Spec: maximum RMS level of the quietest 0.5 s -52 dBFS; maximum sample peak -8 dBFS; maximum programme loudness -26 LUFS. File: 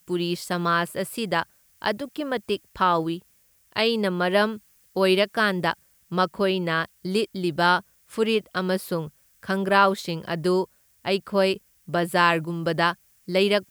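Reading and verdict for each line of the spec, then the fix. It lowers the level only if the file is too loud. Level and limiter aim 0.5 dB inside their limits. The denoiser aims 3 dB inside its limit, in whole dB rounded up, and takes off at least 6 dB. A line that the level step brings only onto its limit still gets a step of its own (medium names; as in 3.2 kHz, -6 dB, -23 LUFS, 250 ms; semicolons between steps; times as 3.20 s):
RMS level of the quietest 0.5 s -62 dBFS: pass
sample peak -5.0 dBFS: fail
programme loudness -24.5 LUFS: fail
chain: trim -2 dB; peak limiter -8.5 dBFS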